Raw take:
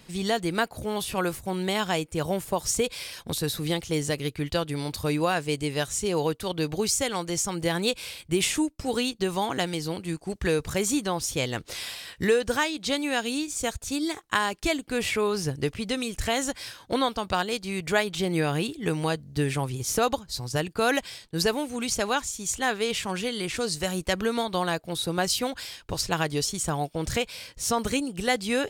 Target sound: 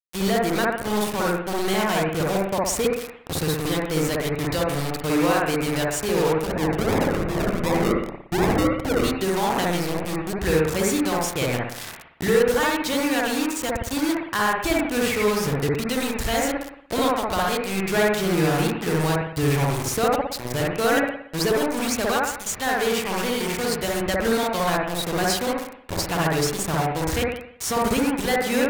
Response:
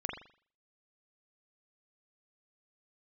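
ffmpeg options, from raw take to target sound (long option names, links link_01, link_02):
-filter_complex "[0:a]asplit=3[link_01][link_02][link_03];[link_01]afade=type=out:start_time=6.45:duration=0.02[link_04];[link_02]acrusher=samples=42:mix=1:aa=0.000001:lfo=1:lforange=25.2:lforate=2.7,afade=type=in:start_time=6.45:duration=0.02,afade=type=out:start_time=9.03:duration=0.02[link_05];[link_03]afade=type=in:start_time=9.03:duration=0.02[link_06];[link_04][link_05][link_06]amix=inputs=3:normalize=0,volume=17.5dB,asoftclip=hard,volume=-17.5dB,acrusher=bits=4:mix=0:aa=0.000001[link_07];[1:a]atrim=start_sample=2205,afade=type=out:start_time=0.41:duration=0.01,atrim=end_sample=18522,asetrate=31752,aresample=44100[link_08];[link_07][link_08]afir=irnorm=-1:irlink=0"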